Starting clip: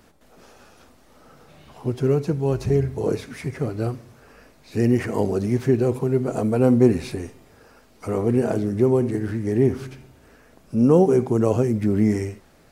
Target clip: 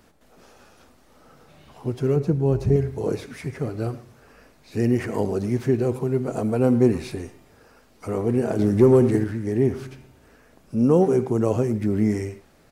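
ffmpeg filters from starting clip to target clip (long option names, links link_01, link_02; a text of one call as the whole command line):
ffmpeg -i in.wav -filter_complex "[0:a]asettb=1/sr,asplit=3[link_01][link_02][link_03];[link_01]atrim=end=2.164[link_04];[link_02]atrim=start=2.16:end=2.76,asetpts=PTS-STARTPTS,afade=type=in:duration=0.004:curve=qsin,afade=type=out:start_time=0.596:duration=0.004:curve=qsin,tiltshelf=frequency=730:gain=5[link_05];[link_03]atrim=start=2.756[link_06];[link_04][link_05]acrossfade=duration=0.004:curve1=hsin:curve2=qsin[link_07];[link_07][link_06]acrossfade=duration=0.004:curve1=qsin:curve2=hsin,asettb=1/sr,asplit=3[link_08][link_09][link_10];[link_08]atrim=end=8.594[link_11];[link_09]atrim=start=8.59:end=9.24,asetpts=PTS-STARTPTS,afade=type=in:duration=0.004:curve=qsin,afade=type=out:start_time=0.646:duration=0.004:curve=qsin,acontrast=69[link_12];[link_10]atrim=start=9.236[link_13];[link_11][link_12]acrossfade=duration=0.004:curve1=hsin:curve2=qsin[link_14];[link_14][link_13]acrossfade=duration=0.004:curve1=qsin:curve2=hsin,asplit=2[link_15][link_16];[link_16]adelay=110,highpass=300,lowpass=3400,asoftclip=type=hard:threshold=-13dB,volume=-15dB[link_17];[link_15][link_17]amix=inputs=2:normalize=0,volume=-2dB" out.wav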